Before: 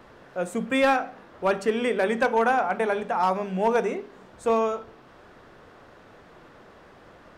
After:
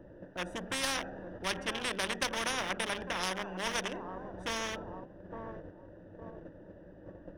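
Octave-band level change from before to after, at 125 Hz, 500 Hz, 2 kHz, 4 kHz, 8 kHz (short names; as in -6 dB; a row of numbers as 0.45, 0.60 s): n/a, -15.5 dB, -6.5 dB, +4.0 dB, +6.5 dB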